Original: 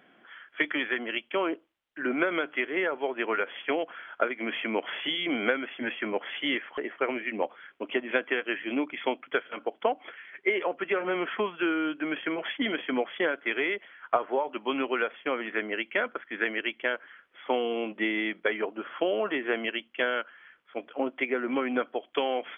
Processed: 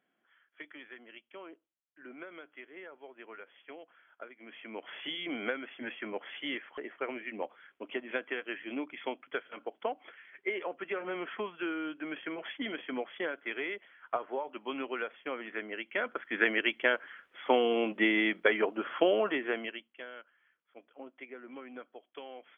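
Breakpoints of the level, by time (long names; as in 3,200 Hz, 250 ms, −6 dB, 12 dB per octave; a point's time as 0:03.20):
0:04.41 −20 dB
0:05.05 −8 dB
0:15.84 −8 dB
0:16.33 +1.5 dB
0:19.07 +1.5 dB
0:19.59 −5.5 dB
0:20.03 −18 dB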